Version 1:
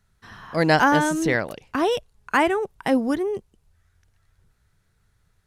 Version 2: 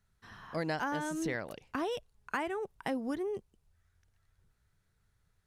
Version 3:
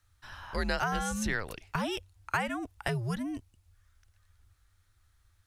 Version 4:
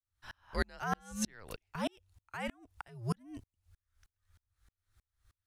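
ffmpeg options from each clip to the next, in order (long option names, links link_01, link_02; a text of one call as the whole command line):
ffmpeg -i in.wav -af "acompressor=threshold=-23dB:ratio=4,volume=-8.5dB" out.wav
ffmpeg -i in.wav -af "afreqshift=-110,equalizer=frequency=350:width_type=o:width=2.8:gain=-8.5,volume=8dB" out.wav
ffmpeg -i in.wav -af "aeval=exprs='val(0)*pow(10,-39*if(lt(mod(-3.2*n/s,1),2*abs(-3.2)/1000),1-mod(-3.2*n/s,1)/(2*abs(-3.2)/1000),(mod(-3.2*n/s,1)-2*abs(-3.2)/1000)/(1-2*abs(-3.2)/1000))/20)':channel_layout=same,volume=3dB" out.wav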